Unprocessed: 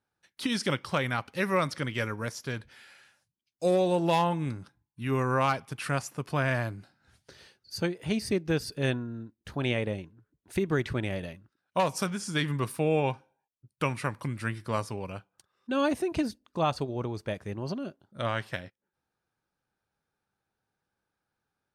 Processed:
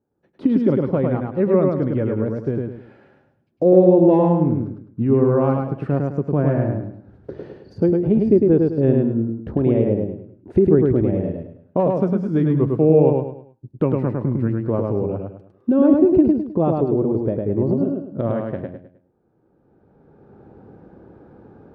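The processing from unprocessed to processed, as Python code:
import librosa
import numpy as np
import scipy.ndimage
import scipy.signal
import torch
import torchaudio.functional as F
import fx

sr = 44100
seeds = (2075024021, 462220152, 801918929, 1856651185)

y = fx.recorder_agc(x, sr, target_db=-23.0, rise_db_per_s=16.0, max_gain_db=30)
y = fx.bandpass_q(y, sr, hz=380.0, q=1.4)
y = fx.tilt_eq(y, sr, slope=-4.0)
y = fx.echo_feedback(y, sr, ms=104, feedback_pct=34, wet_db=-3.0)
y = F.gain(torch.from_numpy(y), 8.5).numpy()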